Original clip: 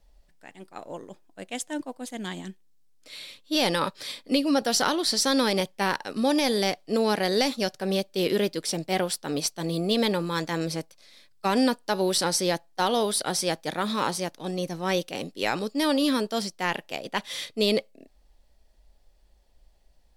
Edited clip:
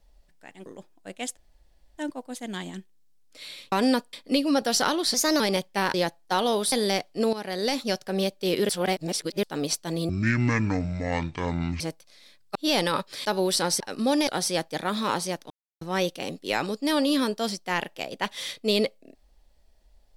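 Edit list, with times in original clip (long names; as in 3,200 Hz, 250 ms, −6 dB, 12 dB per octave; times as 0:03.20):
0:00.66–0:00.98: remove
0:01.69: splice in room tone 0.61 s
0:03.43–0:04.13: swap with 0:11.46–0:11.87
0:05.14–0:05.44: play speed 115%
0:05.98–0:06.45: swap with 0:12.42–0:13.20
0:07.06–0:07.60: fade in, from −13.5 dB
0:08.42–0:09.16: reverse
0:09.82–0:10.71: play speed 52%
0:14.43–0:14.74: silence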